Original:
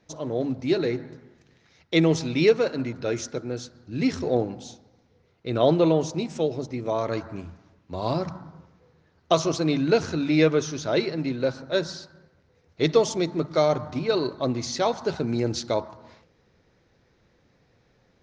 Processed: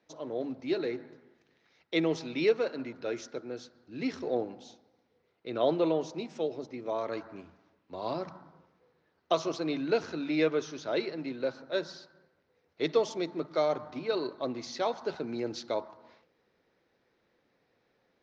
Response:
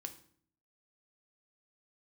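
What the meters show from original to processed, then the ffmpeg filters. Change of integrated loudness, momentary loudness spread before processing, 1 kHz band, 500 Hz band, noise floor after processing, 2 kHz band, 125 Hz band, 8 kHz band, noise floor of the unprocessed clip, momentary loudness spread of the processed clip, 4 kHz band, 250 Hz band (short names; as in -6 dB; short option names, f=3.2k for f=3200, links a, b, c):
-7.5 dB, 14 LU, -6.5 dB, -7.0 dB, -74 dBFS, -6.5 dB, -16.0 dB, n/a, -64 dBFS, 13 LU, -8.0 dB, -9.0 dB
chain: -filter_complex "[0:a]acrossover=split=220 5500:gain=0.178 1 0.158[a][b][c];[a][b][c]amix=inputs=3:normalize=0,volume=-6.5dB"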